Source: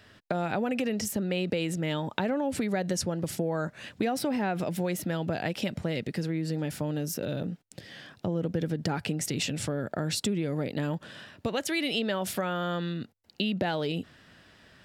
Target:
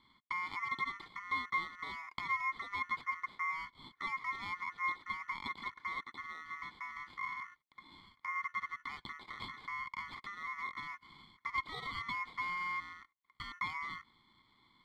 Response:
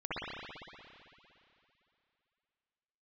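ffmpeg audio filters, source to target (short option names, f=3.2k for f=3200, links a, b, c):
-filter_complex "[0:a]acrossover=split=5800[a][b];[b]acompressor=threshold=-54dB:ratio=4:attack=1:release=60[c];[a][c]amix=inputs=2:normalize=0,acrusher=samples=10:mix=1:aa=0.000001,asplit=3[d][e][f];[d]bandpass=f=530:t=q:w=8,volume=0dB[g];[e]bandpass=f=1.84k:t=q:w=8,volume=-6dB[h];[f]bandpass=f=2.48k:t=q:w=8,volume=-9dB[i];[g][h][i]amix=inputs=3:normalize=0,aeval=exprs='val(0)*sin(2*PI*1600*n/s)':c=same,volume=2.5dB"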